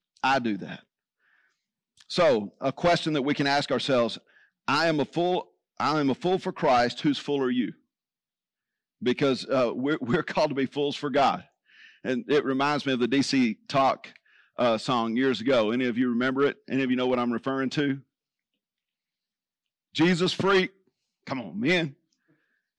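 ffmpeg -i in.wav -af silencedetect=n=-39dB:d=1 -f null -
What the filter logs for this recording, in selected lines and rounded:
silence_start: 0.79
silence_end: 2.00 | silence_duration: 1.21
silence_start: 7.71
silence_end: 9.02 | silence_duration: 1.31
silence_start: 17.99
silence_end: 19.95 | silence_duration: 1.96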